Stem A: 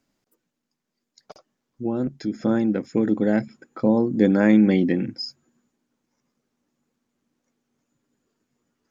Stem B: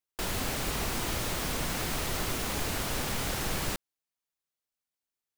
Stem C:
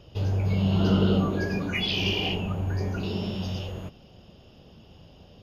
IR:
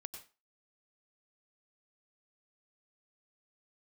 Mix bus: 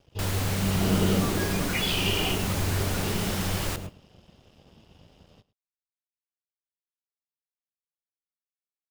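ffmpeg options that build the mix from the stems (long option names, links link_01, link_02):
-filter_complex "[1:a]volume=-1dB,asplit=3[link_01][link_02][link_03];[link_02]volume=-8dB[link_04];[link_03]volume=-14.5dB[link_05];[2:a]dynaudnorm=framelen=600:gausssize=3:maxgain=4dB,aeval=exprs='sgn(val(0))*max(abs(val(0))-0.00251,0)':channel_layout=same,volume=-4.5dB,asplit=2[link_06][link_07];[link_07]volume=-19dB[link_08];[3:a]atrim=start_sample=2205[link_09];[link_04][link_09]afir=irnorm=-1:irlink=0[link_10];[link_05][link_08]amix=inputs=2:normalize=0,aecho=0:1:107:1[link_11];[link_01][link_06][link_10][link_11]amix=inputs=4:normalize=0"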